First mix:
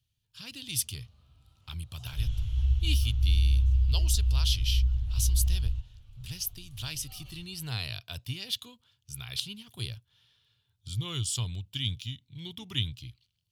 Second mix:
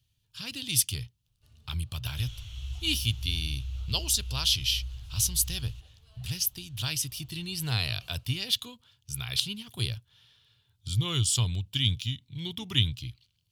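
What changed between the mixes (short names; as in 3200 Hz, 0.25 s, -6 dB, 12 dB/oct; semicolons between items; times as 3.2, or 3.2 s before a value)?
speech +5.5 dB; first sound: entry +0.75 s; second sound: add tilt +3 dB/oct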